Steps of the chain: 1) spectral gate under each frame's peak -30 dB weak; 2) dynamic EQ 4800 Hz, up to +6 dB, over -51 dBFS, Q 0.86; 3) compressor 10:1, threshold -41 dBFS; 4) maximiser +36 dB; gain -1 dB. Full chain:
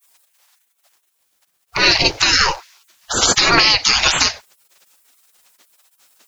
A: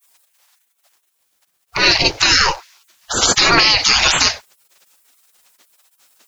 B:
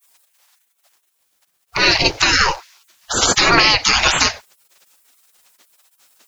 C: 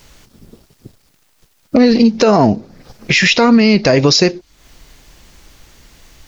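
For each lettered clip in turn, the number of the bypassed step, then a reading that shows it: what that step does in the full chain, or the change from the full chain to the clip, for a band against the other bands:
3, mean gain reduction 4.5 dB; 2, 4 kHz band -3.0 dB; 1, 250 Hz band +18.0 dB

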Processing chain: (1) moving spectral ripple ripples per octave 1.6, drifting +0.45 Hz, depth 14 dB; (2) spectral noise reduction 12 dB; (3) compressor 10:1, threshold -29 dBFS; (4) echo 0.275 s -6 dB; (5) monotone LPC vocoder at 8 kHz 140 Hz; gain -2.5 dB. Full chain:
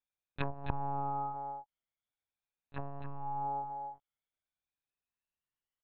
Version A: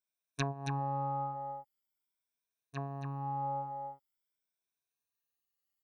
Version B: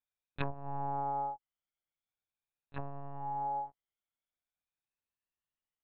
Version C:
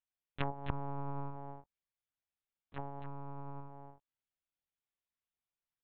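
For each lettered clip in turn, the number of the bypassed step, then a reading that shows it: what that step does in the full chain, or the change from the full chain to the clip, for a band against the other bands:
5, 125 Hz band +2.5 dB; 4, 500 Hz band +1.5 dB; 1, 1 kHz band -8.0 dB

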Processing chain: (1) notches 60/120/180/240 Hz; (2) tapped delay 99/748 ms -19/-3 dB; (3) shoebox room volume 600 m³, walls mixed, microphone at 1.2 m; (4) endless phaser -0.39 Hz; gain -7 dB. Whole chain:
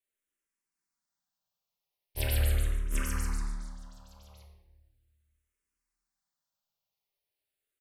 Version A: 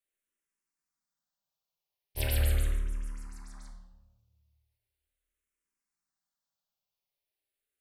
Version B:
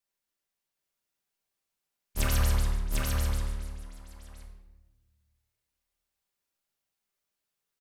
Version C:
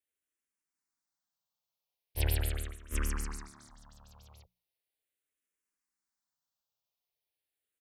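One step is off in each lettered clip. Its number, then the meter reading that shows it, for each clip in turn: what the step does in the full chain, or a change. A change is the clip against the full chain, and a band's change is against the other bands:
2, momentary loudness spread change +5 LU; 4, 1 kHz band +3.0 dB; 3, momentary loudness spread change -3 LU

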